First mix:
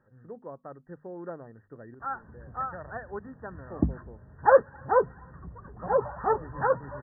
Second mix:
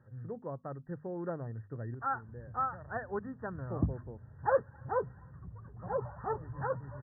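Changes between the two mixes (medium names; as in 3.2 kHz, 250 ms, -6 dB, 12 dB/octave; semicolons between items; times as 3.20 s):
background -10.5 dB; master: add peaking EQ 110 Hz +13.5 dB 1 oct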